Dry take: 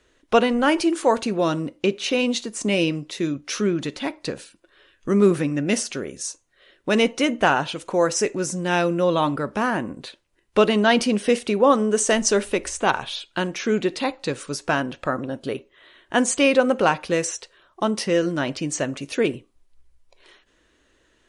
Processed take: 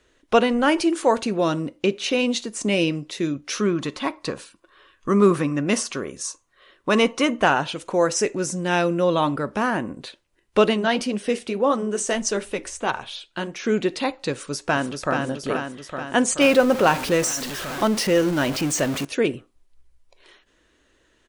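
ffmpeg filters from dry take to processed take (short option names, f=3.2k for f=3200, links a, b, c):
-filter_complex "[0:a]asettb=1/sr,asplit=3[a][b][c];[a]atrim=end=3.604[d];[b]atrim=start=3.6:end=7.42,asetpts=PTS-STARTPTS,afade=t=in:d=0.004:c=qsin,afade=t=out:st=3.816:d=0.004:c=qsin,equalizer=f=1.1k:w=4:g=12.5[e];[c]atrim=start=7.416[f];[d][e]acrossfade=d=0.004:c1=hsin:c2=qsin[g];[g][f]acrossfade=d=0.004:c1=qsin:c2=hsin,asplit=3[h][i][j];[h]afade=t=out:st=10.73:d=0.02[k];[i]flanger=delay=0.9:depth=8.2:regen=-62:speed=1.7:shape=triangular,afade=t=in:st=10.73:d=0.02,afade=t=out:st=13.63:d=0.02[l];[j]afade=t=in:st=13.63:d=0.02[m];[k][l][m]amix=inputs=3:normalize=0,asplit=2[n][o];[o]afade=t=in:st=14.32:d=0.01,afade=t=out:st=15.18:d=0.01,aecho=0:1:430|860|1290|1720|2150|2580|3010|3440|3870|4300:0.595662|0.38718|0.251667|0.163584|0.106329|0.0691141|0.0449242|0.0292007|0.0189805|0.0123373[p];[n][p]amix=inputs=2:normalize=0,asettb=1/sr,asplit=3[q][r][s];[q]atrim=end=16.414[t];[r]atrim=start=16.41:end=19.05,asetpts=PTS-STARTPTS,afade=t=in:d=0.004:c=qsin,afade=t=out:st=2.636:d=0.004:c=qsin,aeval=exprs='val(0)+0.5*0.0531*sgn(val(0))':c=same[u];[s]atrim=start=19.046[v];[t][u]acrossfade=d=0.004:c1=hsin:c2=qsin[w];[w][v]acrossfade=d=0.004:c1=qsin:c2=hsin"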